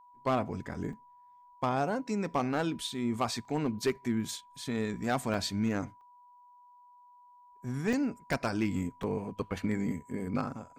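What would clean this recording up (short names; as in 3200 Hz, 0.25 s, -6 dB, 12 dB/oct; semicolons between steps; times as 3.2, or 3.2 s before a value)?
clip repair -21.5 dBFS; notch 980 Hz, Q 30; interpolate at 0.93/3.45/5.34/6.01/7.93/8.33/9.03, 2.8 ms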